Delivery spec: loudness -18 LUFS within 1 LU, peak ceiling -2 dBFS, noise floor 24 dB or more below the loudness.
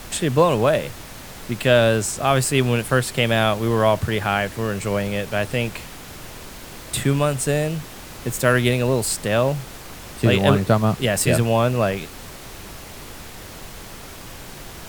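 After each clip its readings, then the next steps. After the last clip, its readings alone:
noise floor -38 dBFS; noise floor target -45 dBFS; loudness -20.5 LUFS; peak level -2.0 dBFS; loudness target -18.0 LUFS
-> noise print and reduce 7 dB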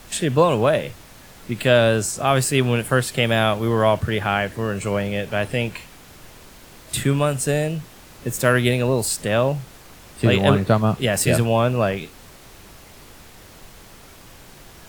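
noise floor -45 dBFS; loudness -20.0 LUFS; peak level -2.0 dBFS; loudness target -18.0 LUFS
-> trim +2 dB; peak limiter -2 dBFS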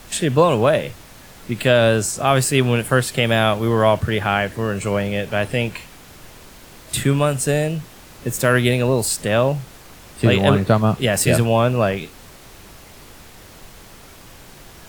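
loudness -18.5 LUFS; peak level -2.0 dBFS; noise floor -43 dBFS

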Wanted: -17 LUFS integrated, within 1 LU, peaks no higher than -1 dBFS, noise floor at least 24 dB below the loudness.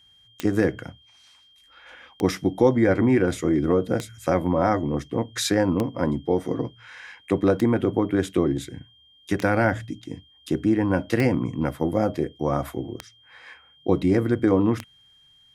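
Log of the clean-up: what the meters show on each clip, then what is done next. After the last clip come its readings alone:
clicks found 9; steady tone 3.2 kHz; tone level -54 dBFS; loudness -23.5 LUFS; peak level -6.0 dBFS; loudness target -17.0 LUFS
-> de-click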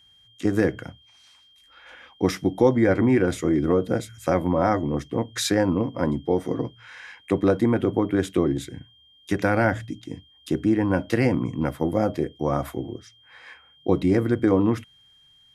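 clicks found 0; steady tone 3.2 kHz; tone level -54 dBFS
-> band-stop 3.2 kHz, Q 30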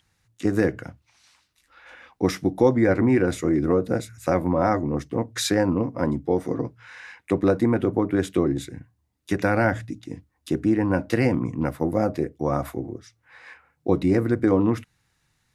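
steady tone not found; loudness -23.5 LUFS; peak level -6.0 dBFS; loudness target -17.0 LUFS
-> trim +6.5 dB; peak limiter -1 dBFS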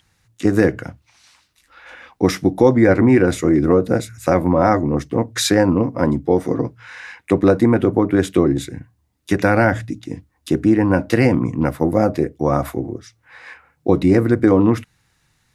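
loudness -17.0 LUFS; peak level -1.0 dBFS; noise floor -65 dBFS

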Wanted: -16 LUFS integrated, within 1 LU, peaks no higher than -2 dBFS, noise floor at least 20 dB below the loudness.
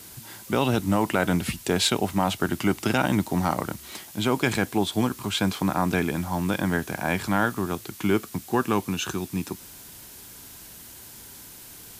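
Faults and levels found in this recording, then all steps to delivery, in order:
noise floor -45 dBFS; noise floor target -46 dBFS; loudness -25.5 LUFS; peak level -7.5 dBFS; loudness target -16.0 LUFS
-> noise reduction 6 dB, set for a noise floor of -45 dBFS; trim +9.5 dB; peak limiter -2 dBFS

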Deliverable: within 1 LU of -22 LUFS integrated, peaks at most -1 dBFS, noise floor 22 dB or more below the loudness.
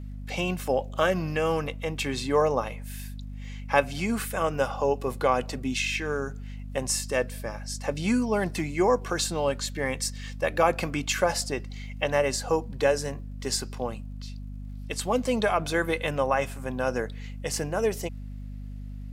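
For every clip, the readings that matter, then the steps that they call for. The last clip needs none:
tick rate 35 per s; hum 50 Hz; highest harmonic 250 Hz; hum level -35 dBFS; loudness -27.5 LUFS; peak level -5.5 dBFS; loudness target -22.0 LUFS
-> de-click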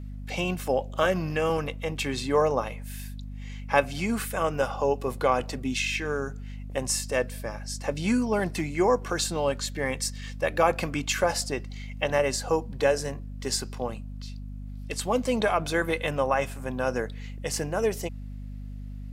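tick rate 0.10 per s; hum 50 Hz; highest harmonic 250 Hz; hum level -35 dBFS
-> hum notches 50/100/150/200/250 Hz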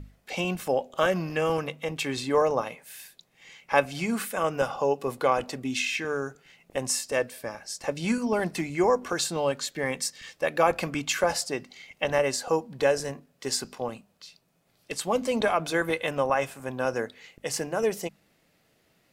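hum not found; loudness -28.0 LUFS; peak level -5.5 dBFS; loudness target -22.0 LUFS
-> trim +6 dB; peak limiter -1 dBFS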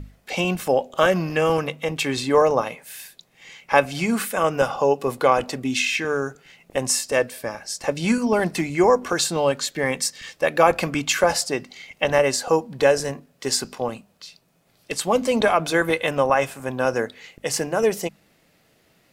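loudness -22.0 LUFS; peak level -1.0 dBFS; noise floor -62 dBFS

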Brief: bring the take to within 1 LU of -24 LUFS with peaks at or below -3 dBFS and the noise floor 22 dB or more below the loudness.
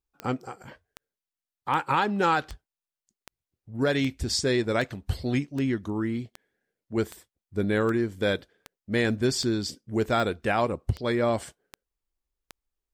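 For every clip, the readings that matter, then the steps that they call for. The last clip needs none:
clicks found 17; loudness -27.5 LUFS; peak level -13.5 dBFS; loudness target -24.0 LUFS
-> de-click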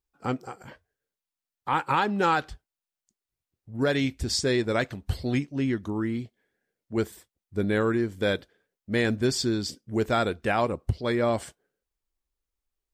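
clicks found 0; loudness -27.5 LUFS; peak level -13.5 dBFS; loudness target -24.0 LUFS
-> trim +3.5 dB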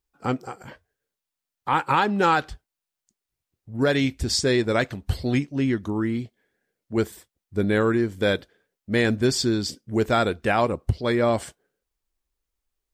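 loudness -24.0 LUFS; peak level -10.0 dBFS; noise floor -87 dBFS

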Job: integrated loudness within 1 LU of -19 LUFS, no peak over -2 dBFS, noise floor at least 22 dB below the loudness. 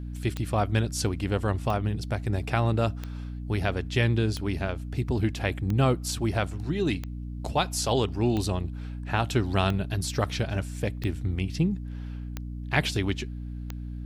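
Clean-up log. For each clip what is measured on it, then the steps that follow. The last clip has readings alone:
clicks found 11; hum 60 Hz; highest harmonic 300 Hz; hum level -33 dBFS; loudness -28.5 LUFS; peak level -10.0 dBFS; loudness target -19.0 LUFS
-> de-click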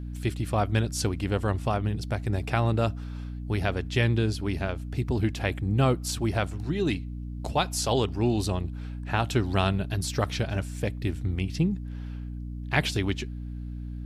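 clicks found 0; hum 60 Hz; highest harmonic 300 Hz; hum level -33 dBFS
-> hum notches 60/120/180/240/300 Hz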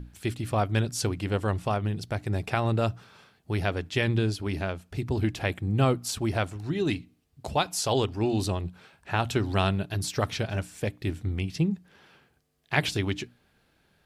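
hum not found; loudness -28.5 LUFS; peak level -10.0 dBFS; loudness target -19.0 LUFS
-> trim +9.5 dB; peak limiter -2 dBFS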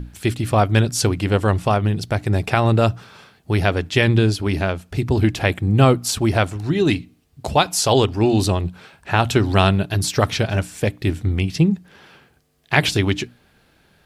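loudness -19.5 LUFS; peak level -2.0 dBFS; noise floor -58 dBFS

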